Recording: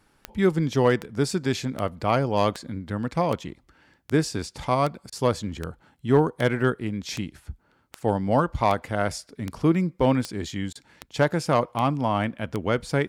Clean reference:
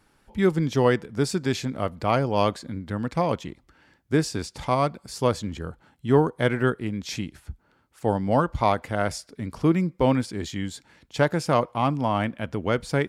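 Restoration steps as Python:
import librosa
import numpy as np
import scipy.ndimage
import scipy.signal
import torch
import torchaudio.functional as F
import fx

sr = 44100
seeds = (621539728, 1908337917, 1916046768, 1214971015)

y = fx.fix_declip(x, sr, threshold_db=-9.5)
y = fx.fix_declick_ar(y, sr, threshold=10.0)
y = fx.fix_interpolate(y, sr, at_s=(5.1, 10.73), length_ms=22.0)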